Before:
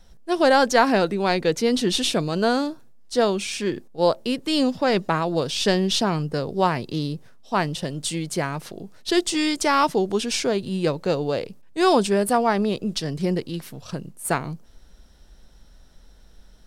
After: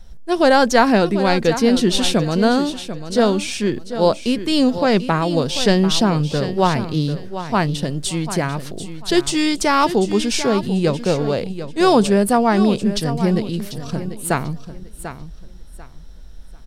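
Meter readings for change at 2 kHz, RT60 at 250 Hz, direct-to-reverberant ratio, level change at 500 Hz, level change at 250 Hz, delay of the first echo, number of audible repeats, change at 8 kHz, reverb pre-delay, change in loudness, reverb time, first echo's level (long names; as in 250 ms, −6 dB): +3.5 dB, no reverb audible, no reverb audible, +4.0 dB, +6.5 dB, 742 ms, 2, +3.5 dB, no reverb audible, +4.5 dB, no reverb audible, −11.5 dB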